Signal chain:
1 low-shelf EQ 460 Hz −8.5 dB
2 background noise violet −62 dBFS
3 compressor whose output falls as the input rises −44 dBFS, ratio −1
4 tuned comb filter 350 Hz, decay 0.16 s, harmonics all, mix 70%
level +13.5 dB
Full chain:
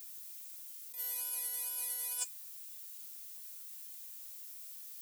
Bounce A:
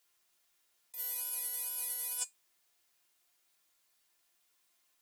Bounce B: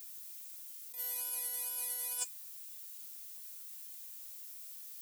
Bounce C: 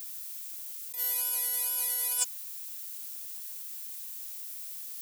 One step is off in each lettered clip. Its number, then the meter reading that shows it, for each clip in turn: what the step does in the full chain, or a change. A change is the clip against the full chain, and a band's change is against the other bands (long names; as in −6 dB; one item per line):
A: 2, change in momentary loudness spread −5 LU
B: 1, 500 Hz band +3.5 dB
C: 4, change in integrated loudness +8.0 LU